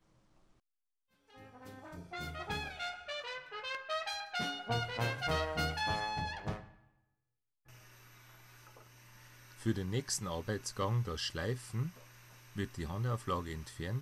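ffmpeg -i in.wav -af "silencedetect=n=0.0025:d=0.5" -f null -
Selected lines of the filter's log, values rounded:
silence_start: 0.00
silence_end: 1.30 | silence_duration: 1.30
silence_start: 6.74
silence_end: 7.68 | silence_duration: 0.95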